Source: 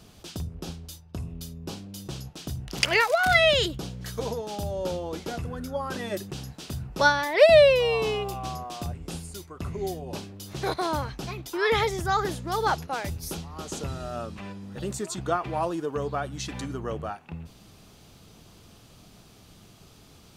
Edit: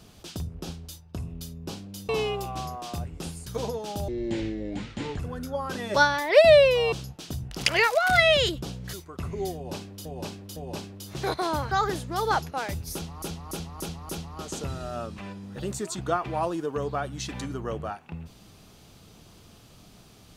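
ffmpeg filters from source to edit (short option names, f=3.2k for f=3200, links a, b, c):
-filter_complex "[0:a]asplit=15[a][b][c][d][e][f][g][h][i][j][k][l][m][n][o];[a]atrim=end=2.092[p];[b]atrim=start=7.968:end=9.352[q];[c]atrim=start=4.098:end=4.714[r];[d]atrim=start=4.71:end=5.4,asetpts=PTS-STARTPTS,asetrate=27342,aresample=44100,atrim=end_sample=49079,asetpts=PTS-STARTPTS[s];[e]atrim=start=5.396:end=6.152[t];[f]atrim=start=6.988:end=7.972[u];[g]atrim=start=2.088:end=4.102[v];[h]atrim=start=9.348:end=10.472[w];[i]atrim=start=9.958:end=10.472[x];[j]atrim=start=9.958:end=11.112[y];[k]atrim=start=12.068:end=13.582[z];[l]atrim=start=13.288:end=13.582[aa];[m]atrim=start=13.288:end=13.582[ab];[n]atrim=start=13.288:end=13.582[ac];[o]atrim=start=13.288[ad];[p][q]acrossfade=d=0.004:c1=hsin:c2=hsin[ae];[ae][r]acrossfade=d=0.004:c1=hsin:c2=hsin[af];[af][s]acrossfade=d=0.004:c1=hsin:c2=hsin[ag];[ag][t]acrossfade=d=0.004:c1=hsin:c2=hsin[ah];[ah][u]acrossfade=d=0.004:c1=hsin:c2=hsin[ai];[ai][v]acrossfade=d=0.004:c1=hsin:c2=hsin[aj];[aj][w]acrossfade=d=0.004:c1=hsin:c2=hsin[ak];[ak][x]acrossfade=d=0.004:c1=hsin:c2=hsin[al];[al][y]acrossfade=d=0.004:c1=hsin:c2=hsin[am];[am][z]acrossfade=d=0.004:c1=hsin:c2=hsin[an];[an][aa]acrossfade=d=0.004:c1=hsin:c2=hsin[ao];[ao][ab]acrossfade=d=0.004:c1=hsin:c2=hsin[ap];[ap][ac]acrossfade=d=0.004:c1=hsin:c2=hsin[aq];[aq][ad]acrossfade=d=0.004:c1=hsin:c2=hsin"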